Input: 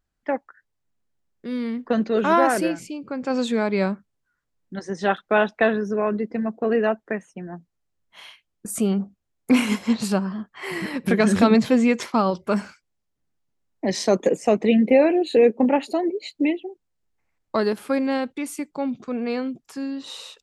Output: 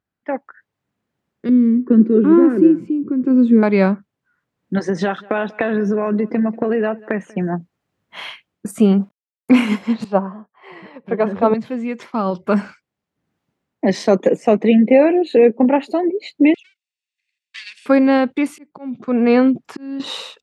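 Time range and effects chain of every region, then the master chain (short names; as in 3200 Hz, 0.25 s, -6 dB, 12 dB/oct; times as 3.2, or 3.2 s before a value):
1.49–3.63 upward compressor, threshold -29 dBFS + EQ curve 150 Hz 0 dB, 360 Hz +10 dB, 730 Hz -24 dB, 1100 Hz -12 dB, 6000 Hz -21 dB + narrowing echo 69 ms, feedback 62%, band-pass 980 Hz, level -19 dB
4.77–7.5 short-mantissa float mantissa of 8-bit + compressor 10:1, threshold -28 dBFS + echo 0.189 s -23 dB
8.71–9.51 sample gate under -49 dBFS + upward expander, over -42 dBFS
10.04–11.54 LPF 3200 Hz + band shelf 700 Hz +10 dB + three-band expander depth 100%
16.54–17.86 minimum comb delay 1.1 ms + elliptic band-pass 2300–8700 Hz, stop band 50 dB
18.47–20 high shelf 5600 Hz -8 dB + auto swell 0.598 s
whole clip: HPF 130 Hz 12 dB/oct; tone controls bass +3 dB, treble -11 dB; AGC gain up to 16 dB; gain -1 dB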